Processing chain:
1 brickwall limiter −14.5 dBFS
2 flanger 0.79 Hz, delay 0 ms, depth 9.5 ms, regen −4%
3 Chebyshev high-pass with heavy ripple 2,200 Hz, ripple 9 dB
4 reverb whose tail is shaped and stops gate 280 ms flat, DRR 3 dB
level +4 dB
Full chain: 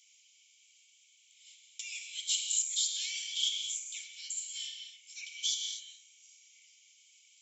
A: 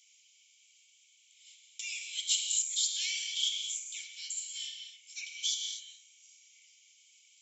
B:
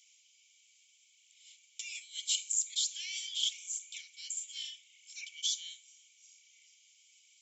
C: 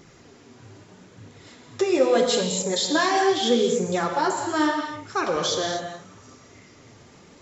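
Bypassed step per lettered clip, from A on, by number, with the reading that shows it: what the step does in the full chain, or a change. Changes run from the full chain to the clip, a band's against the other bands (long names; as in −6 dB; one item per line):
1, change in crest factor +2.0 dB
4, change in crest factor +2.0 dB
3, change in crest factor −4.5 dB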